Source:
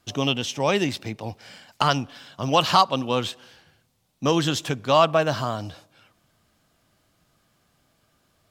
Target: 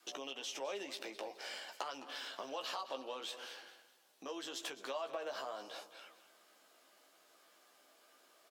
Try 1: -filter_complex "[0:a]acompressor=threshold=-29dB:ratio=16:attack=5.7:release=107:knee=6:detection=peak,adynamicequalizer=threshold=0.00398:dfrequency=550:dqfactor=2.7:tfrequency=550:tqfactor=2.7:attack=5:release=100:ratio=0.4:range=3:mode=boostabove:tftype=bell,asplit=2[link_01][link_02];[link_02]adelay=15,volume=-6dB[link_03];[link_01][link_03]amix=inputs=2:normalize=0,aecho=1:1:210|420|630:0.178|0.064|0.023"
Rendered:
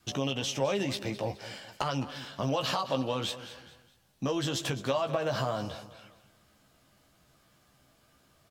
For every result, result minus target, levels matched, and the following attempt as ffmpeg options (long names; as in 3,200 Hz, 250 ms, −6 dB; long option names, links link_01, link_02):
downward compressor: peak gain reduction −10.5 dB; 250 Hz band +6.5 dB
-filter_complex "[0:a]acompressor=threshold=-40dB:ratio=16:attack=5.7:release=107:knee=6:detection=peak,adynamicequalizer=threshold=0.00398:dfrequency=550:dqfactor=2.7:tfrequency=550:tqfactor=2.7:attack=5:release=100:ratio=0.4:range=3:mode=boostabove:tftype=bell,asplit=2[link_01][link_02];[link_02]adelay=15,volume=-6dB[link_03];[link_01][link_03]amix=inputs=2:normalize=0,aecho=1:1:210|420|630:0.178|0.064|0.023"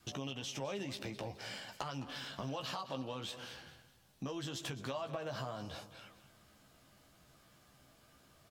250 Hz band +7.0 dB
-filter_complex "[0:a]acompressor=threshold=-40dB:ratio=16:attack=5.7:release=107:knee=6:detection=peak,adynamicequalizer=threshold=0.00398:dfrequency=550:dqfactor=2.7:tfrequency=550:tqfactor=2.7:attack=5:release=100:ratio=0.4:range=3:mode=boostabove:tftype=bell,highpass=frequency=350:width=0.5412,highpass=frequency=350:width=1.3066,asplit=2[link_01][link_02];[link_02]adelay=15,volume=-6dB[link_03];[link_01][link_03]amix=inputs=2:normalize=0,aecho=1:1:210|420|630:0.178|0.064|0.023"